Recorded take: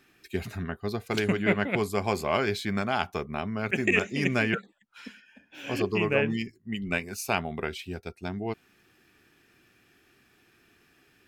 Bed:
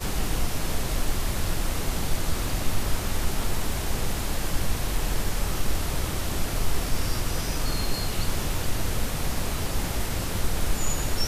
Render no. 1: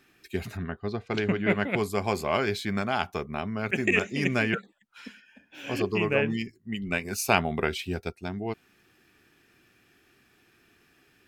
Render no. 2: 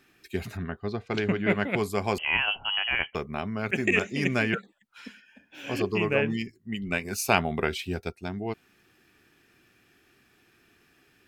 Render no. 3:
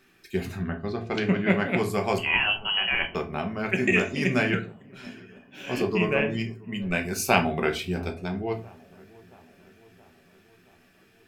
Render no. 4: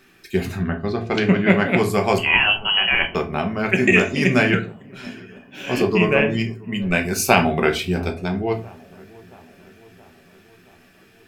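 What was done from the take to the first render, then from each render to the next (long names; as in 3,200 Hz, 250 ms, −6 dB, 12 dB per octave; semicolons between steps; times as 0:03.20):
0:00.57–0:01.50: high-frequency loss of the air 140 metres; 0:07.05–0:08.10: clip gain +5 dB
0:02.18–0:03.15: voice inversion scrambler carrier 3,100 Hz
delay with a low-pass on its return 674 ms, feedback 61%, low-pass 1,200 Hz, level −23.5 dB; rectangular room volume 190 cubic metres, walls furnished, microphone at 1.1 metres
level +7 dB; brickwall limiter −1 dBFS, peak gain reduction 3 dB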